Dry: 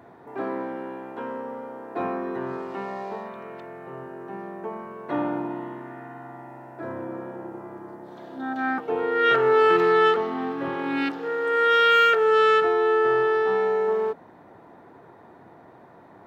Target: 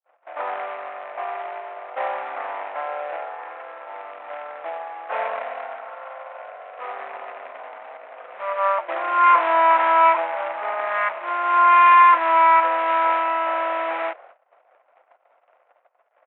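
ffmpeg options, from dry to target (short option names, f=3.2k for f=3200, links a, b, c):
-af "agate=range=-56dB:threshold=-46dB:ratio=16:detection=peak,asetrate=33038,aresample=44100,atempo=1.33484,aresample=8000,acrusher=bits=2:mode=log:mix=0:aa=0.000001,aresample=44100,asoftclip=type=tanh:threshold=-11.5dB,asuperpass=centerf=1200:order=8:qfactor=0.67,volume=8.5dB"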